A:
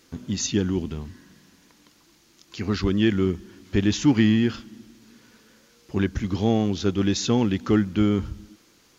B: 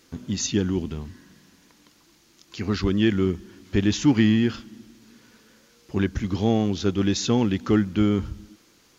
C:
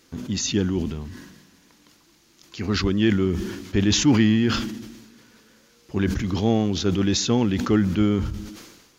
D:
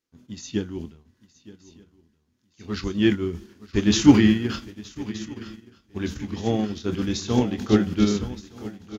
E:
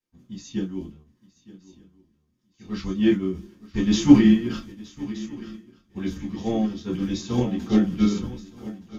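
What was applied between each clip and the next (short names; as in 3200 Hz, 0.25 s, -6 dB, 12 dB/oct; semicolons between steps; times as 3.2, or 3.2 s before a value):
nothing audible
sustainer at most 49 dB/s
doubler 24 ms -8.5 dB; swung echo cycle 1.222 s, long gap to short 3:1, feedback 50%, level -8 dB; upward expander 2.5:1, over -35 dBFS; gain +6 dB
reverb, pre-delay 3 ms, DRR -4.5 dB; gain -13 dB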